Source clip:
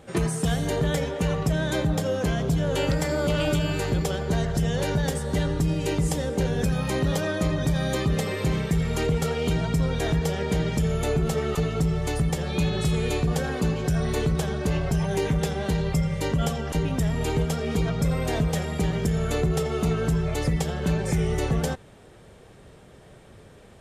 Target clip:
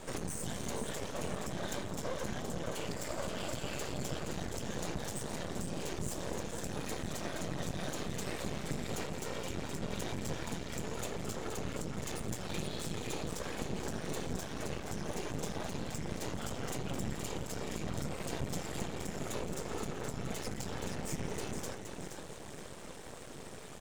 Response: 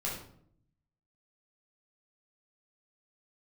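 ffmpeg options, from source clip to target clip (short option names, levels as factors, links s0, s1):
-af "highpass=120,equalizer=f=7100:t=o:w=1.1:g=8.5,acompressor=threshold=0.0141:ratio=6,flanger=delay=8.7:depth=5.4:regen=-77:speed=1.1:shape=triangular,asoftclip=type=tanh:threshold=0.0106,aecho=1:1:472|944|1416|1888|2360:0.447|0.197|0.0865|0.0381|0.0167,afftfilt=real='hypot(re,im)*cos(2*PI*random(0))':imag='hypot(re,im)*sin(2*PI*random(1))':win_size=512:overlap=0.75,aeval=exprs='max(val(0),0)':c=same,volume=6.31"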